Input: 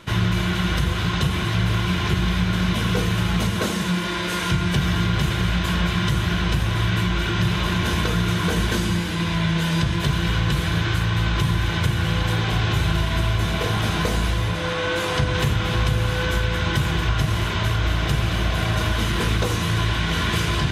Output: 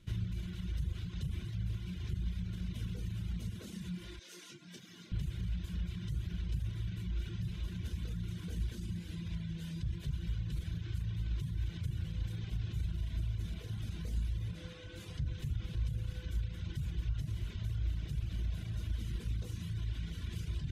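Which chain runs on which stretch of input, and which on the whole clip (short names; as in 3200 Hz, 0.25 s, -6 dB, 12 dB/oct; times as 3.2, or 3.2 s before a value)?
4.19–5.12 HPF 240 Hz 24 dB/oct + bell 5900 Hz +6.5 dB 0.67 oct + detuned doubles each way 26 cents
whole clip: limiter -16.5 dBFS; passive tone stack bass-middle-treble 10-0-1; reverb removal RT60 0.97 s; gain +1.5 dB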